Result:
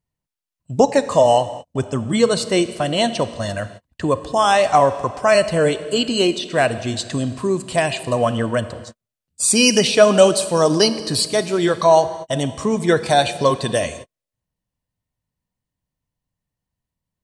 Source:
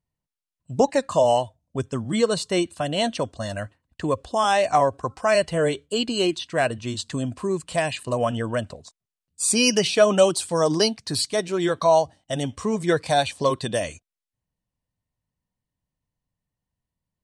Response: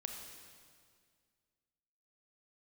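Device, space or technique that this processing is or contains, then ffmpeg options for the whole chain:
keyed gated reverb: -filter_complex "[0:a]asplit=3[link_01][link_02][link_03];[1:a]atrim=start_sample=2205[link_04];[link_02][link_04]afir=irnorm=-1:irlink=0[link_05];[link_03]apad=whole_len=760139[link_06];[link_05][link_06]sidechaingate=range=-55dB:threshold=-45dB:ratio=16:detection=peak,volume=-3dB[link_07];[link_01][link_07]amix=inputs=2:normalize=0,volume=1.5dB"

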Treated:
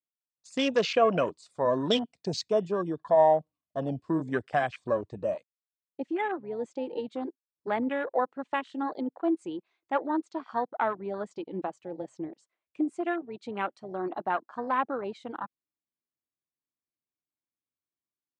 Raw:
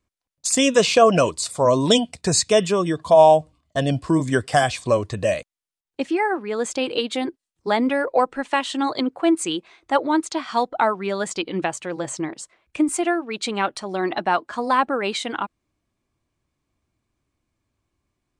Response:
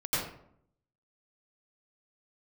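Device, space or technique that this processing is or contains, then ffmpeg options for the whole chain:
over-cleaned archive recording: -af "highpass=160,lowpass=5900,afwtdn=0.0501,volume=-8.5dB"

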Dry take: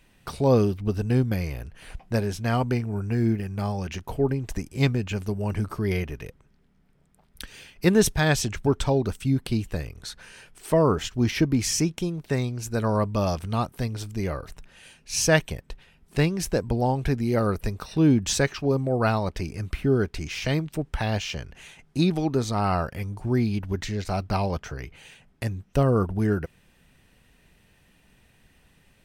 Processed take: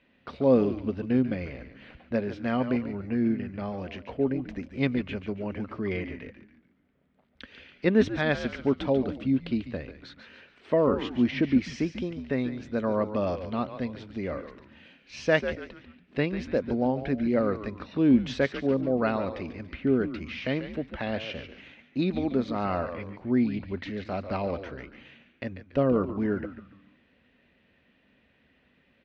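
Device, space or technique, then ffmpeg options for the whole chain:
frequency-shifting delay pedal into a guitar cabinet: -filter_complex "[0:a]asplit=5[link_01][link_02][link_03][link_04][link_05];[link_02]adelay=142,afreqshift=-100,volume=-10dB[link_06];[link_03]adelay=284,afreqshift=-200,volume=-18.4dB[link_07];[link_04]adelay=426,afreqshift=-300,volume=-26.8dB[link_08];[link_05]adelay=568,afreqshift=-400,volume=-35.2dB[link_09];[link_01][link_06][link_07][link_08][link_09]amix=inputs=5:normalize=0,highpass=86,equalizer=frequency=110:width_type=q:width=4:gain=-9,equalizer=frequency=160:width_type=q:width=4:gain=-5,equalizer=frequency=250:width_type=q:width=4:gain=8,equalizer=frequency=550:width_type=q:width=4:gain=6,equalizer=frequency=850:width_type=q:width=4:gain=-4,equalizer=frequency=2000:width_type=q:width=4:gain=3,lowpass=frequency=3700:width=0.5412,lowpass=frequency=3700:width=1.3066,volume=-4.5dB"

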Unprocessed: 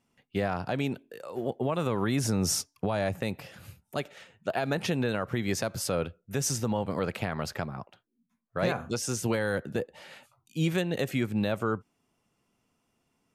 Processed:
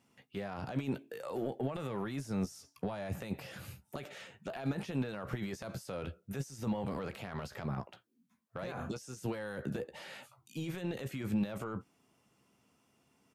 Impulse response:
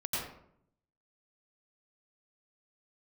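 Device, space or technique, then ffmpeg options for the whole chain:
de-esser from a sidechain: -filter_complex "[0:a]highpass=73,asplit=2[link_01][link_02];[link_02]highpass=frequency=4900:poles=1,apad=whole_len=588636[link_03];[link_01][link_03]sidechaincompress=threshold=-56dB:ratio=16:attack=3.4:release=21,asettb=1/sr,asplit=3[link_04][link_05][link_06];[link_04]atrim=end=1.364[link_07];[link_05]atrim=start=1.36:end=1.94,asetpts=PTS-STARTPTS,afade=type=in:duration=0.004:curve=qsin,afade=type=out:start_time=0.576:duration=0.004:curve=qsin,bandreject=frequency=1000:width=9.3[link_08];[link_06]atrim=start=1.936[link_09];[link_07][link_08]acrossfade=duration=0.004:curve1=hsin:curve2=qsin[link_10];[link_10][link_09]acrossfade=duration=0.004:curve1=qsin:curve2=hsin,asplit=2[link_11][link_12];[link_12]adelay=15,volume=-10.5dB[link_13];[link_11][link_13]amix=inputs=2:normalize=0,volume=3dB"

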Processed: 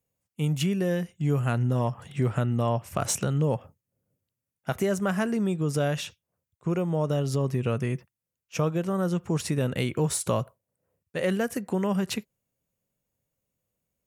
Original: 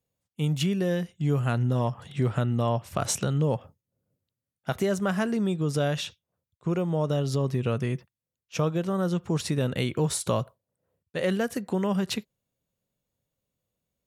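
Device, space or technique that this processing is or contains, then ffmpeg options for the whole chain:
exciter from parts: -filter_complex "[0:a]asplit=2[link_01][link_02];[link_02]highpass=2700,asoftclip=type=tanh:threshold=-30.5dB,highpass=frequency=2600:width=0.5412,highpass=frequency=2600:width=1.3066,volume=-5dB[link_03];[link_01][link_03]amix=inputs=2:normalize=0"

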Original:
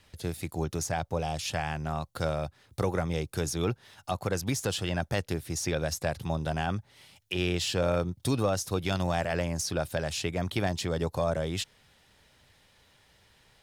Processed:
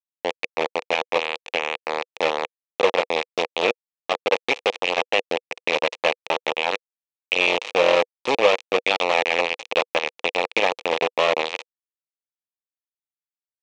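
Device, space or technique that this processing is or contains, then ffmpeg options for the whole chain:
hand-held game console: -af "acrusher=bits=3:mix=0:aa=0.000001,highpass=490,equalizer=frequency=490:width_type=q:width=4:gain=9,equalizer=frequency=850:width_type=q:width=4:gain=3,equalizer=frequency=1500:width_type=q:width=4:gain=-10,equalizer=frequency=2500:width_type=q:width=4:gain=8,equalizer=frequency=4800:width_type=q:width=4:gain=-7,lowpass=frequency=4900:width=0.5412,lowpass=frequency=4900:width=1.3066,volume=8dB"

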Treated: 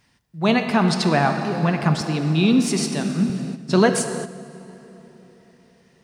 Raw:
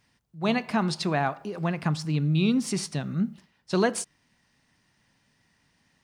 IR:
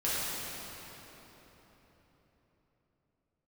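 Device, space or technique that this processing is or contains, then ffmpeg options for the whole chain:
keyed gated reverb: -filter_complex "[0:a]asplit=3[link_01][link_02][link_03];[1:a]atrim=start_sample=2205[link_04];[link_02][link_04]afir=irnorm=-1:irlink=0[link_05];[link_03]apad=whole_len=266183[link_06];[link_05][link_06]sidechaingate=range=-9dB:threshold=-59dB:ratio=16:detection=peak,volume=-13dB[link_07];[link_01][link_07]amix=inputs=2:normalize=0,asettb=1/sr,asplit=3[link_08][link_09][link_10];[link_08]atrim=end=2.014[link_11];[link_09]atrim=start=2.01:end=3.3,asetpts=PTS-STARTPTS,afade=type=in:duration=0.004:curve=qsin,afade=type=out:start_time=1.286:duration=0.004:curve=qsin,highpass=frequency=180:width=0.5412,highpass=frequency=180:width=1.3066[link_12];[link_10]atrim=start=3.296[link_13];[link_11][link_12]acrossfade=duration=0.004:curve1=hsin:curve2=qsin[link_14];[link_14][link_13]acrossfade=duration=0.004:curve1=qsin:curve2=hsin,volume=5dB"

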